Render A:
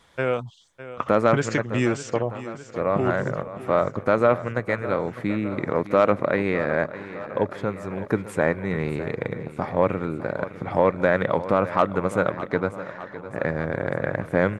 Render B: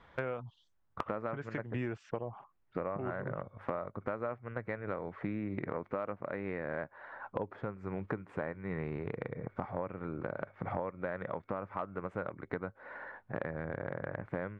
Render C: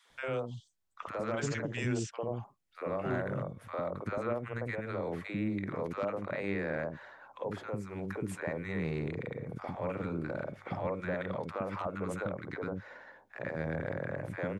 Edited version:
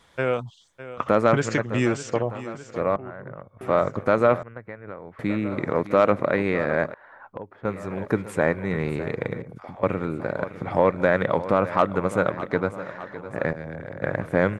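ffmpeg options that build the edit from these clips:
-filter_complex "[1:a]asplit=3[s0][s1][s2];[2:a]asplit=2[s3][s4];[0:a]asplit=6[s5][s6][s7][s8][s9][s10];[s5]atrim=end=2.962[s11];[s0]atrim=start=2.958:end=3.612[s12];[s6]atrim=start=3.608:end=4.432[s13];[s1]atrim=start=4.428:end=5.192[s14];[s7]atrim=start=5.188:end=6.942[s15];[s2]atrim=start=6.938:end=7.652[s16];[s8]atrim=start=7.648:end=9.422[s17];[s3]atrim=start=9.418:end=9.832[s18];[s9]atrim=start=9.828:end=13.532[s19];[s4]atrim=start=13.528:end=14.022[s20];[s10]atrim=start=14.018[s21];[s11][s12]acrossfade=d=0.004:c1=hsin:c2=hsin[s22];[s22][s13]acrossfade=d=0.004:c1=hsin:c2=hsin[s23];[s23][s14]acrossfade=d=0.004:c1=hsin:c2=hsin[s24];[s24][s15]acrossfade=d=0.004:c1=hsin:c2=hsin[s25];[s25][s16]acrossfade=d=0.004:c1=hsin:c2=hsin[s26];[s26][s17]acrossfade=d=0.004:c1=hsin:c2=hsin[s27];[s27][s18]acrossfade=d=0.004:c1=hsin:c2=hsin[s28];[s28][s19]acrossfade=d=0.004:c1=hsin:c2=hsin[s29];[s29][s20]acrossfade=d=0.004:c1=hsin:c2=hsin[s30];[s30][s21]acrossfade=d=0.004:c1=hsin:c2=hsin"

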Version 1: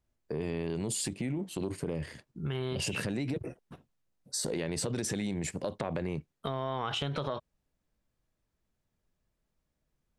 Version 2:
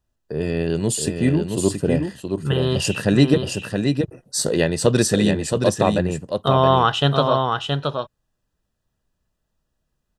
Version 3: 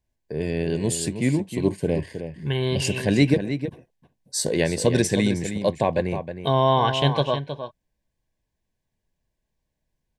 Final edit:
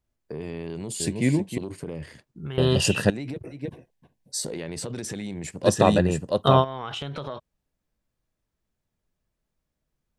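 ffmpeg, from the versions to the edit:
-filter_complex "[2:a]asplit=2[s0][s1];[1:a]asplit=2[s2][s3];[0:a]asplit=5[s4][s5][s6][s7][s8];[s4]atrim=end=1.002[s9];[s0]atrim=start=0.998:end=1.582[s10];[s5]atrim=start=1.578:end=2.582[s11];[s2]atrim=start=2.578:end=3.102[s12];[s6]atrim=start=3.098:end=3.74[s13];[s1]atrim=start=3.5:end=4.49[s14];[s7]atrim=start=4.25:end=5.69[s15];[s3]atrim=start=5.63:end=6.65[s16];[s8]atrim=start=6.59[s17];[s9][s10]acrossfade=d=0.004:c1=hsin:c2=hsin[s18];[s18][s11]acrossfade=d=0.004:c1=hsin:c2=hsin[s19];[s19][s12]acrossfade=d=0.004:c1=hsin:c2=hsin[s20];[s20][s13]acrossfade=d=0.004:c1=hsin:c2=hsin[s21];[s21][s14]acrossfade=d=0.24:c1=tri:c2=tri[s22];[s22][s15]acrossfade=d=0.24:c1=tri:c2=tri[s23];[s23][s16]acrossfade=d=0.06:c1=tri:c2=tri[s24];[s24][s17]acrossfade=d=0.06:c1=tri:c2=tri"

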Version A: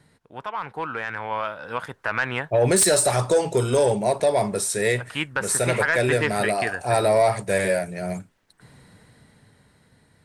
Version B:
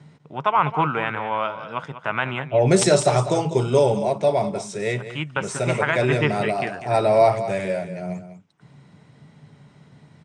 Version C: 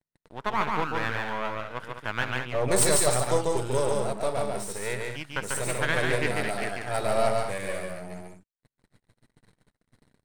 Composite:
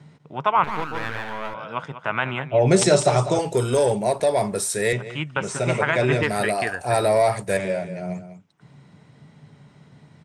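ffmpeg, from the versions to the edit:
-filter_complex "[0:a]asplit=2[s0][s1];[1:a]asplit=4[s2][s3][s4][s5];[s2]atrim=end=0.642[s6];[2:a]atrim=start=0.638:end=1.542[s7];[s3]atrim=start=1.538:end=3.392[s8];[s0]atrim=start=3.388:end=4.932[s9];[s4]atrim=start=4.928:end=6.232[s10];[s1]atrim=start=6.228:end=7.572[s11];[s5]atrim=start=7.568[s12];[s6][s7]acrossfade=d=0.004:c1=hsin:c2=hsin[s13];[s13][s8]acrossfade=d=0.004:c1=hsin:c2=hsin[s14];[s14][s9]acrossfade=d=0.004:c1=hsin:c2=hsin[s15];[s15][s10]acrossfade=d=0.004:c1=hsin:c2=hsin[s16];[s16][s11]acrossfade=d=0.004:c1=hsin:c2=hsin[s17];[s17][s12]acrossfade=d=0.004:c1=hsin:c2=hsin"

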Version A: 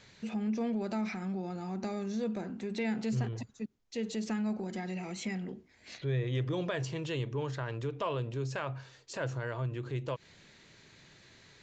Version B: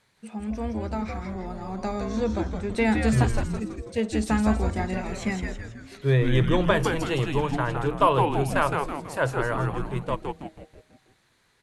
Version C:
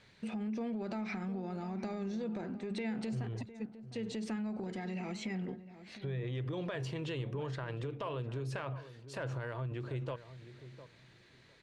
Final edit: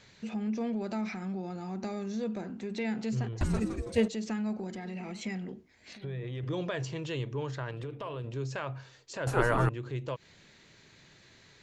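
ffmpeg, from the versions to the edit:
-filter_complex "[1:a]asplit=2[s0][s1];[2:a]asplit=3[s2][s3][s4];[0:a]asplit=6[s5][s6][s7][s8][s9][s10];[s5]atrim=end=3.412[s11];[s0]atrim=start=3.408:end=4.082[s12];[s6]atrim=start=4.078:end=4.752[s13];[s2]atrim=start=4.748:end=5.212[s14];[s7]atrim=start=5.208:end=5.932[s15];[s3]atrim=start=5.928:end=6.432[s16];[s8]atrim=start=6.428:end=7.712[s17];[s4]atrim=start=7.708:end=8.242[s18];[s9]atrim=start=8.238:end=9.272[s19];[s1]atrim=start=9.268:end=9.692[s20];[s10]atrim=start=9.688[s21];[s11][s12]acrossfade=d=0.004:c1=hsin:c2=hsin[s22];[s22][s13]acrossfade=d=0.004:c1=hsin:c2=hsin[s23];[s23][s14]acrossfade=d=0.004:c1=hsin:c2=hsin[s24];[s24][s15]acrossfade=d=0.004:c1=hsin:c2=hsin[s25];[s25][s16]acrossfade=d=0.004:c1=hsin:c2=hsin[s26];[s26][s17]acrossfade=d=0.004:c1=hsin:c2=hsin[s27];[s27][s18]acrossfade=d=0.004:c1=hsin:c2=hsin[s28];[s28][s19]acrossfade=d=0.004:c1=hsin:c2=hsin[s29];[s29][s20]acrossfade=d=0.004:c1=hsin:c2=hsin[s30];[s30][s21]acrossfade=d=0.004:c1=hsin:c2=hsin"

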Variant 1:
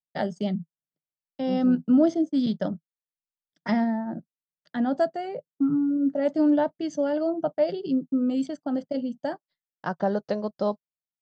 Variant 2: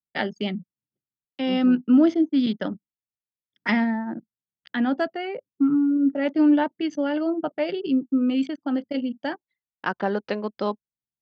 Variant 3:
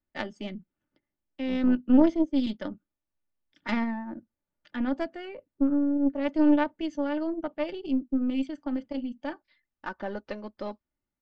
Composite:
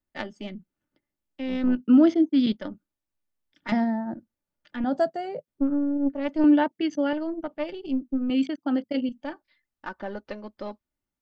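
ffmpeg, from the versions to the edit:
-filter_complex "[1:a]asplit=3[s0][s1][s2];[0:a]asplit=2[s3][s4];[2:a]asplit=6[s5][s6][s7][s8][s9][s10];[s5]atrim=end=1.822[s11];[s0]atrim=start=1.818:end=2.522[s12];[s6]atrim=start=2.518:end=3.722[s13];[s3]atrim=start=3.718:end=4.142[s14];[s7]atrim=start=4.138:end=4.842[s15];[s4]atrim=start=4.838:end=5.482[s16];[s8]atrim=start=5.478:end=6.442[s17];[s1]atrim=start=6.438:end=7.132[s18];[s9]atrim=start=7.128:end=8.302[s19];[s2]atrim=start=8.298:end=9.092[s20];[s10]atrim=start=9.088[s21];[s11][s12]acrossfade=d=0.004:c1=hsin:c2=hsin[s22];[s22][s13]acrossfade=d=0.004:c1=hsin:c2=hsin[s23];[s23][s14]acrossfade=d=0.004:c1=hsin:c2=hsin[s24];[s24][s15]acrossfade=d=0.004:c1=hsin:c2=hsin[s25];[s25][s16]acrossfade=d=0.004:c1=hsin:c2=hsin[s26];[s26][s17]acrossfade=d=0.004:c1=hsin:c2=hsin[s27];[s27][s18]acrossfade=d=0.004:c1=hsin:c2=hsin[s28];[s28][s19]acrossfade=d=0.004:c1=hsin:c2=hsin[s29];[s29][s20]acrossfade=d=0.004:c1=hsin:c2=hsin[s30];[s30][s21]acrossfade=d=0.004:c1=hsin:c2=hsin"

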